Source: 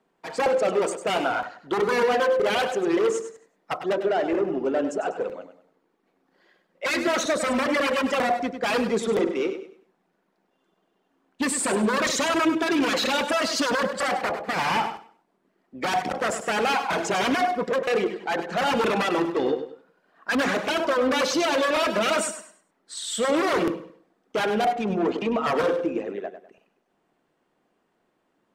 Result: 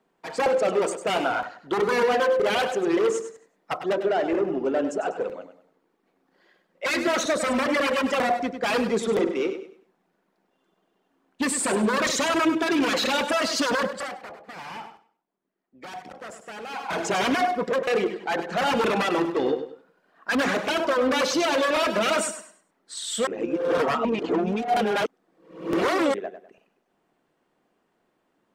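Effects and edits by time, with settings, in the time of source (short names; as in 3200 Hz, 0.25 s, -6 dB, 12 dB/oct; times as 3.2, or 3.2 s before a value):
13.79–17.07 dip -14 dB, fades 0.37 s
23.27–26.14 reverse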